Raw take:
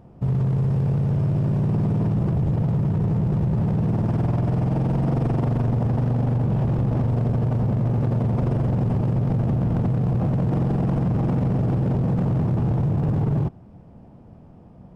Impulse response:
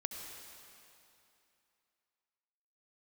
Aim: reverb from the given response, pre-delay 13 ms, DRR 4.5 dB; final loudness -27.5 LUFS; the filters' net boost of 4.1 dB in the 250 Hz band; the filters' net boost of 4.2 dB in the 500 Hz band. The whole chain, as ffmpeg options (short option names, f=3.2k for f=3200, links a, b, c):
-filter_complex "[0:a]equalizer=f=250:t=o:g=5.5,equalizer=f=500:t=o:g=3.5,asplit=2[a][b];[1:a]atrim=start_sample=2205,adelay=13[c];[b][c]afir=irnorm=-1:irlink=0,volume=-4.5dB[d];[a][d]amix=inputs=2:normalize=0,volume=-8.5dB"